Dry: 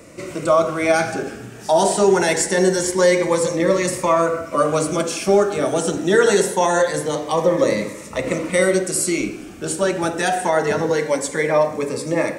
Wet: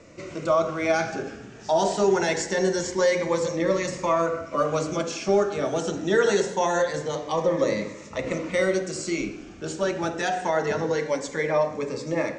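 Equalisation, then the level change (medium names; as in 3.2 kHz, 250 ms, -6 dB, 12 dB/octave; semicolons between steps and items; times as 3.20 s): steep low-pass 7.1 kHz 48 dB/octave; bass shelf 71 Hz +6 dB; hum notches 60/120/180/240/300/360 Hz; -6.0 dB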